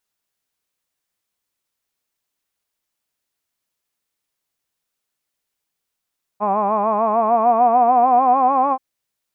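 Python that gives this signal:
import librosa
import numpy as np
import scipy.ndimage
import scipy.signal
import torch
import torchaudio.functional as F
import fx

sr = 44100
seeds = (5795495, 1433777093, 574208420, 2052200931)

y = fx.vowel(sr, seeds[0], length_s=2.38, word='hod', hz=200.0, glide_st=5.5, vibrato_hz=6.7, vibrato_st=0.9)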